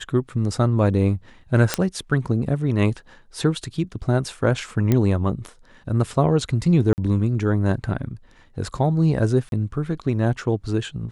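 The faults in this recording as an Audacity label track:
1.740000	1.740000	pop -4 dBFS
4.920000	4.920000	pop -7 dBFS
6.930000	6.980000	gap 49 ms
9.490000	9.520000	gap 32 ms

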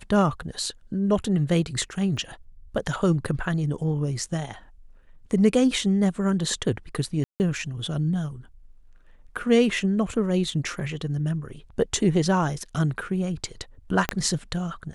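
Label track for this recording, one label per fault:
2.170000	2.170000	gap 2.1 ms
7.240000	7.400000	gap 0.159 s
14.090000	14.090000	pop -8 dBFS

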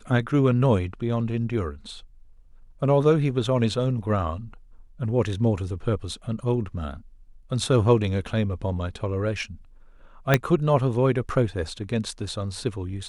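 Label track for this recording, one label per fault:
10.340000	10.340000	pop -4 dBFS

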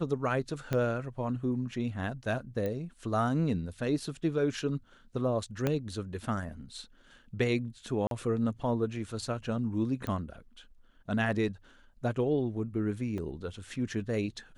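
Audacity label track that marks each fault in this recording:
0.730000	0.730000	pop -17 dBFS
2.660000	2.660000	pop -22 dBFS
5.670000	5.670000	pop -15 dBFS
8.070000	8.110000	gap 42 ms
10.070000	10.070000	pop -23 dBFS
13.180000	13.180000	gap 2.7 ms

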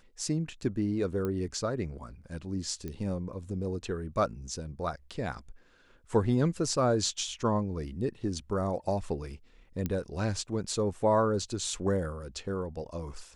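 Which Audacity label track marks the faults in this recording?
1.250000	1.250000	pop -21 dBFS
2.880000	2.880000	pop -25 dBFS
9.860000	9.860000	pop -18 dBFS

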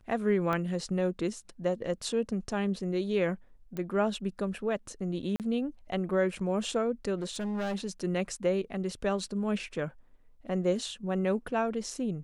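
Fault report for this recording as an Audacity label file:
0.530000	0.530000	pop -19 dBFS
3.770000	3.770000	pop -24 dBFS
5.360000	5.400000	gap 38 ms
7.170000	7.760000	clipped -29.5 dBFS

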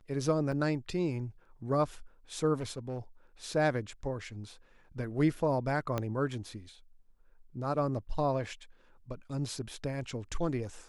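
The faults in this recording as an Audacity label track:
0.520000	0.520000	gap 4.3 ms
2.590000	2.990000	clipped -32 dBFS
5.980000	5.980000	pop -18 dBFS

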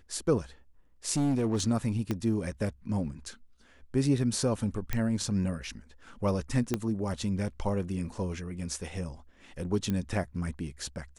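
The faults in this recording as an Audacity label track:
1.140000	1.630000	clipped -23 dBFS
2.110000	2.110000	pop -17 dBFS
4.930000	4.930000	pop -15 dBFS
6.740000	6.740000	pop -14 dBFS
9.900000	9.900000	pop -19 dBFS

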